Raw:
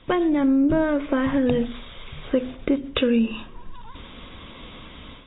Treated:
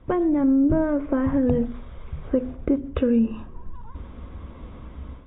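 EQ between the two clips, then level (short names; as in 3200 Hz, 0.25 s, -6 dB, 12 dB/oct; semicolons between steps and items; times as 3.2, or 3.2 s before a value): LPF 1300 Hz 12 dB/oct; bell 67 Hz +10.5 dB 0.79 oct; low shelf 330 Hz +4 dB; -2.5 dB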